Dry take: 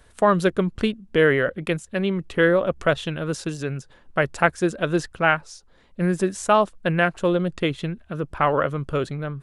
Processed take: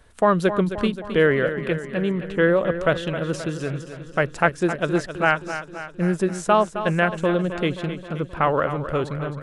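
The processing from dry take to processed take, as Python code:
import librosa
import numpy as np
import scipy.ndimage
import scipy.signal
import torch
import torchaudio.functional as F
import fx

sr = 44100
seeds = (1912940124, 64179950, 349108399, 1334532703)

y = fx.high_shelf(x, sr, hz=3600.0, db=fx.steps((0.0, -3.5), (1.25, -11.0), (2.48, -3.5)))
y = fx.echo_feedback(y, sr, ms=264, feedback_pct=59, wet_db=-11.0)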